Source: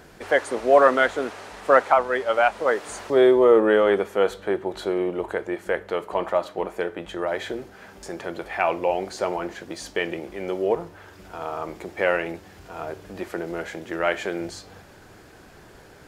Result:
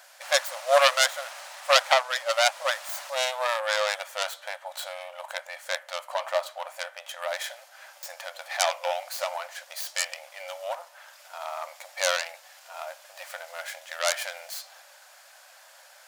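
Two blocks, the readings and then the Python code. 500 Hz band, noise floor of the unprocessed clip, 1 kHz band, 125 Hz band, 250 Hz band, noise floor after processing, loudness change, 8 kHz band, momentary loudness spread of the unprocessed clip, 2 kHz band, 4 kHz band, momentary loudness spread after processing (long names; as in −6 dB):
−9.0 dB, −49 dBFS, −4.0 dB, below −40 dB, below −40 dB, −53 dBFS, −4.5 dB, +11.5 dB, 18 LU, −1.5 dB, +9.5 dB, 18 LU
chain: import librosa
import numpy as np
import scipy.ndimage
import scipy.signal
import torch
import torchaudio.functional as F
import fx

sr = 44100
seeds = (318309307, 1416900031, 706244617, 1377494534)

y = fx.tracing_dist(x, sr, depth_ms=0.39)
y = fx.brickwall_highpass(y, sr, low_hz=520.0)
y = fx.high_shelf(y, sr, hz=3000.0, db=11.5)
y = F.gain(torch.from_numpy(y), -4.5).numpy()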